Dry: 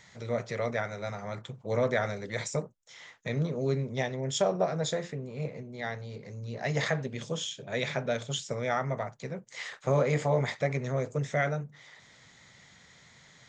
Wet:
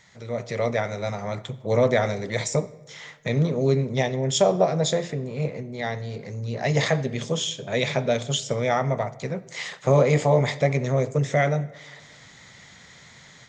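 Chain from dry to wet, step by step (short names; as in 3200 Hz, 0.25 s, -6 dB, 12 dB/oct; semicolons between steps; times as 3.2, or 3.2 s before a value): dynamic EQ 1500 Hz, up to -7 dB, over -50 dBFS, Q 2.4; AGC gain up to 8 dB; on a send: reverb RT60 1.3 s, pre-delay 59 ms, DRR 19 dB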